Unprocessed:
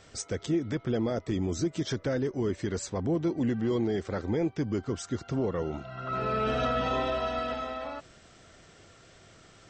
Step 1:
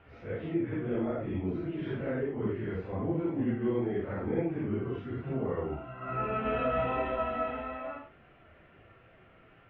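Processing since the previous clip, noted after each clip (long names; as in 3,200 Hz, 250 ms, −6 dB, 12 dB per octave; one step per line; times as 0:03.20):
random phases in long frames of 200 ms
elliptic low-pass filter 2,700 Hz, stop band 80 dB
level −1.5 dB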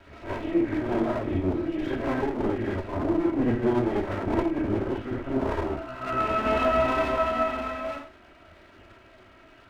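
lower of the sound and its delayed copy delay 3.1 ms
level +7.5 dB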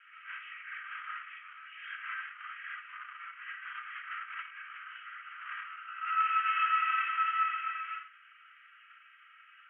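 Chebyshev band-pass filter 1,200–3,100 Hz, order 5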